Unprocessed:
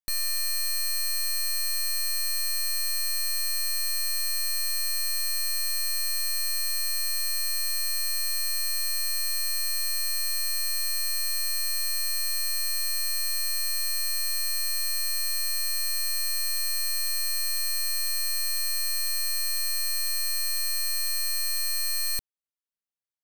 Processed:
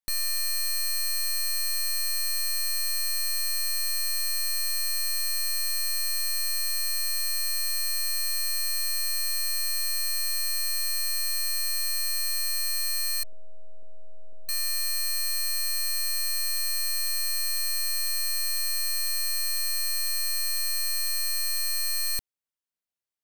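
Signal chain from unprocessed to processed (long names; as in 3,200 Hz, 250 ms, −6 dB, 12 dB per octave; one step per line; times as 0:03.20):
0:13.23–0:14.49: elliptic low-pass filter 660 Hz, stop band 60 dB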